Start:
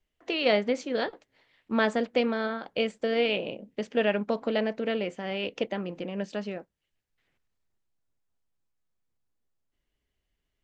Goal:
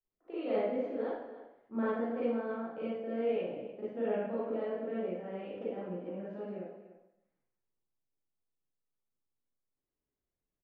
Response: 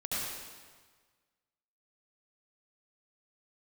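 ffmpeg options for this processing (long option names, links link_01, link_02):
-filter_complex "[0:a]lowpass=1100,lowshelf=frequency=100:gain=-9,asplit=2[link_01][link_02];[link_02]adelay=291.5,volume=-14dB,highshelf=frequency=4000:gain=-6.56[link_03];[link_01][link_03]amix=inputs=2:normalize=0[link_04];[1:a]atrim=start_sample=2205,asetrate=83790,aresample=44100[link_05];[link_04][link_05]afir=irnorm=-1:irlink=0,volume=-6dB"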